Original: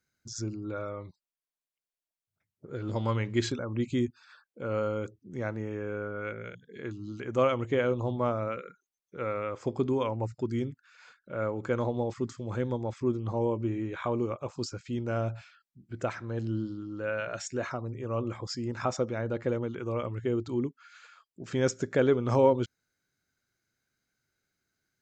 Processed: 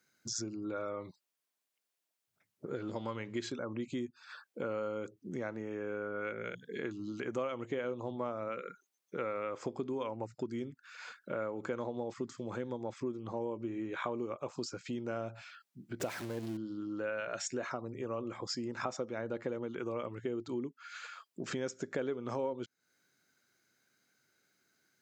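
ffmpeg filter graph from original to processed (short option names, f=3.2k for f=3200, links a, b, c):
-filter_complex "[0:a]asettb=1/sr,asplit=3[a][b][c];[a]atrim=end=16.004[d];[b]atrim=start=16:end=16.57,asetpts=PTS-STARTPTS,afade=t=in:d=0.004:c=qsin,afade=t=out:st=0.566:d=0.004:c=qsin,aeval=exprs='val(0)+0.5*0.0178*sgn(val(0))':c=same,equalizer=f=1.3k:w=2:g=-6[e];[c]atrim=start=16.566[f];[d][e]acrossfade=d=0.004:c1=hsin:c2=qsin[g];[g][f]acrossfade=d=0.004:c1=qsin:c2=hsin,acompressor=threshold=-42dB:ratio=5,highpass=190,volume=7dB"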